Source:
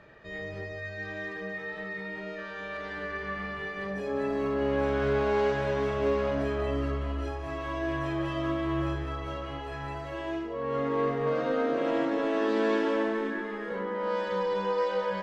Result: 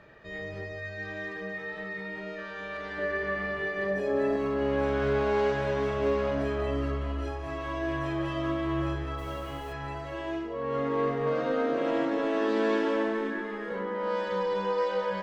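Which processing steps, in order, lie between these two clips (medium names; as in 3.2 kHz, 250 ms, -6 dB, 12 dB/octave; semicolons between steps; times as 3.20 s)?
2.98–4.36 s: small resonant body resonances 360/600/1800 Hz, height 10 dB; 9.17–9.72 s: added noise pink -55 dBFS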